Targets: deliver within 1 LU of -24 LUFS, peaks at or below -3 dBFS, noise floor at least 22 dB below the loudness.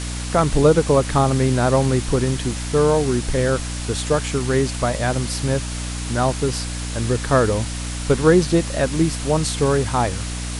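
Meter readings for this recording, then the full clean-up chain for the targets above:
hum 60 Hz; highest harmonic 300 Hz; hum level -26 dBFS; noise floor -27 dBFS; noise floor target -42 dBFS; loudness -20.0 LUFS; peak level -2.5 dBFS; loudness target -24.0 LUFS
-> de-hum 60 Hz, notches 5; noise reduction 15 dB, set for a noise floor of -27 dBFS; trim -4 dB

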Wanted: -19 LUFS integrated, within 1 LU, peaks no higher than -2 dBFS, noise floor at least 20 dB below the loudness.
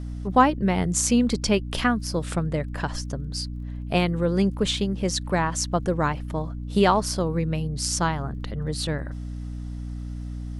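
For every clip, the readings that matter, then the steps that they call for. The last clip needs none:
tick rate 19 per s; hum 60 Hz; highest harmonic 300 Hz; hum level -30 dBFS; loudness -24.5 LUFS; peak level -4.5 dBFS; loudness target -19.0 LUFS
-> de-click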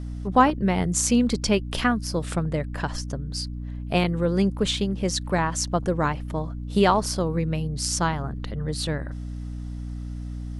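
tick rate 0 per s; hum 60 Hz; highest harmonic 300 Hz; hum level -30 dBFS
-> hum notches 60/120/180/240/300 Hz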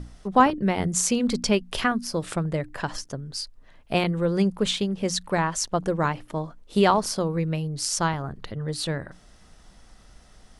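hum not found; loudness -25.5 LUFS; peak level -4.5 dBFS; loudness target -19.0 LUFS
-> trim +6.5 dB; peak limiter -2 dBFS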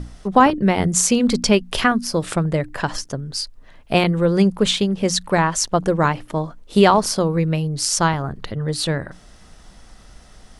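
loudness -19.0 LUFS; peak level -2.0 dBFS; noise floor -46 dBFS

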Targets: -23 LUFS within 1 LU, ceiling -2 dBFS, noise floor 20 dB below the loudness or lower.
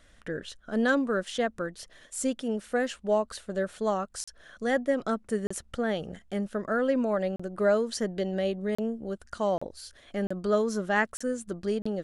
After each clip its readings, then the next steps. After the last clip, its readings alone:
dropouts 8; longest dropout 35 ms; loudness -30.0 LUFS; peak level -12.5 dBFS; loudness target -23.0 LUFS
-> interpolate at 4.24/5.47/7.36/8.75/9.58/10.27/11.17/11.82 s, 35 ms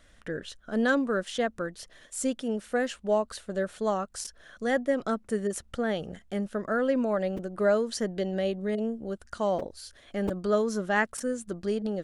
dropouts 0; loudness -30.0 LUFS; peak level -12.5 dBFS; loudness target -23.0 LUFS
-> trim +7 dB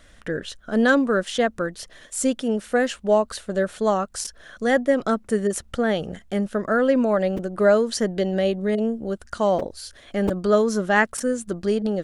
loudness -23.0 LUFS; peak level -5.5 dBFS; noise floor -51 dBFS

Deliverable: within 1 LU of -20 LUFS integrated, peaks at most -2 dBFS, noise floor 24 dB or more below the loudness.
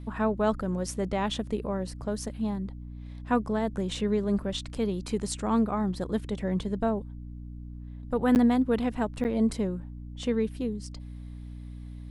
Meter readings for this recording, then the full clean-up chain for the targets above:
dropouts 2; longest dropout 9.4 ms; hum 60 Hz; highest harmonic 300 Hz; hum level -38 dBFS; loudness -29.0 LUFS; peak level -12.0 dBFS; loudness target -20.0 LUFS
-> interpolate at 8.35/9.24 s, 9.4 ms; hum notches 60/120/180/240/300 Hz; trim +9 dB

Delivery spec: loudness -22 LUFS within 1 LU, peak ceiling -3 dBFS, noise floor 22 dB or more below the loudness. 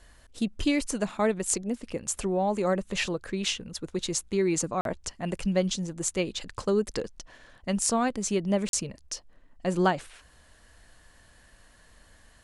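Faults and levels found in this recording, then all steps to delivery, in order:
dropouts 2; longest dropout 42 ms; loudness -29.0 LUFS; peak level -8.5 dBFS; loudness target -22.0 LUFS
-> interpolate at 4.81/8.69 s, 42 ms; trim +7 dB; peak limiter -3 dBFS

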